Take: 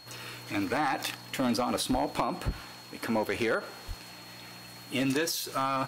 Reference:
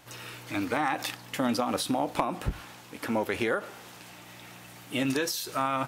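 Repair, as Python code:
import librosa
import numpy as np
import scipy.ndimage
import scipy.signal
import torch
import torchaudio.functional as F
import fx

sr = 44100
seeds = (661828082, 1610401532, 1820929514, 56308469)

y = fx.fix_declip(x, sr, threshold_db=-20.5)
y = fx.notch(y, sr, hz=4300.0, q=30.0)
y = fx.fix_deplosive(y, sr, at_s=(1.91, 3.87))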